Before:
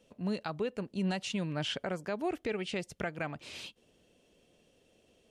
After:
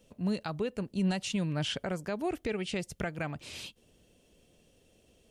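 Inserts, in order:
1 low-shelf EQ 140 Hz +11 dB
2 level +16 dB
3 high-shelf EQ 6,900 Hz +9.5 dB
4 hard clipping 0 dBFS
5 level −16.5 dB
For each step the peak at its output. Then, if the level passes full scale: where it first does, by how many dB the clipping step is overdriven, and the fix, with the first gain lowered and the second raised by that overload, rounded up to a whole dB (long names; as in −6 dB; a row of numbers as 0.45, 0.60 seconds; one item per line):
−20.0, −4.0, −4.0, −4.0, −20.5 dBFS
no step passes full scale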